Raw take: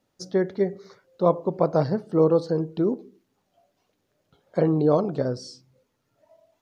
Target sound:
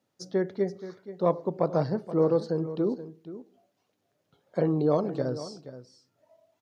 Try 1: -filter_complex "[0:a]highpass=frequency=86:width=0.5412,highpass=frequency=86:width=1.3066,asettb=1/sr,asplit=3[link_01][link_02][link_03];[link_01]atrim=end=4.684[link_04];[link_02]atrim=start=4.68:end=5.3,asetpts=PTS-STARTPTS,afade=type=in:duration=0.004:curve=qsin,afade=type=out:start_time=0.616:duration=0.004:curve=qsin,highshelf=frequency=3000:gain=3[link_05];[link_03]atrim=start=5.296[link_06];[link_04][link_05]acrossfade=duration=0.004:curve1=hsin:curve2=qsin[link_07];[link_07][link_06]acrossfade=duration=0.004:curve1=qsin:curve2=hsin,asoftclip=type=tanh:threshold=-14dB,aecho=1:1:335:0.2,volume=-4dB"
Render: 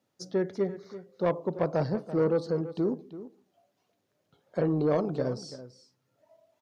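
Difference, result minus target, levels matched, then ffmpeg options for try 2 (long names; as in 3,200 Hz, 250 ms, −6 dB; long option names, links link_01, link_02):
soft clipping: distortion +15 dB; echo 142 ms early
-filter_complex "[0:a]highpass=frequency=86:width=0.5412,highpass=frequency=86:width=1.3066,asettb=1/sr,asplit=3[link_01][link_02][link_03];[link_01]atrim=end=4.684[link_04];[link_02]atrim=start=4.68:end=5.3,asetpts=PTS-STARTPTS,afade=type=in:duration=0.004:curve=qsin,afade=type=out:start_time=0.616:duration=0.004:curve=qsin,highshelf=frequency=3000:gain=3[link_05];[link_03]atrim=start=5.296[link_06];[link_04][link_05]acrossfade=duration=0.004:curve1=hsin:curve2=qsin[link_07];[link_07][link_06]acrossfade=duration=0.004:curve1=qsin:curve2=hsin,asoftclip=type=tanh:threshold=-4.5dB,aecho=1:1:477:0.2,volume=-4dB"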